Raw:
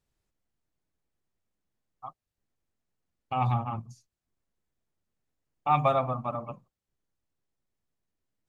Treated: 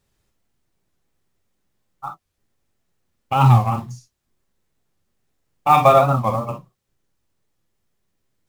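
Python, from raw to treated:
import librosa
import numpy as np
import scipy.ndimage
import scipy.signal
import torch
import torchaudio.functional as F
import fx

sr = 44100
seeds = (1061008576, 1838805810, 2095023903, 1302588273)

p1 = fx.quant_float(x, sr, bits=2)
p2 = x + (p1 * librosa.db_to_amplitude(-4.0))
p3 = fx.rev_gated(p2, sr, seeds[0], gate_ms=80, shape='flat', drr_db=3.5)
p4 = fx.record_warp(p3, sr, rpm=45.0, depth_cents=160.0)
y = p4 * librosa.db_to_amplitude(6.0)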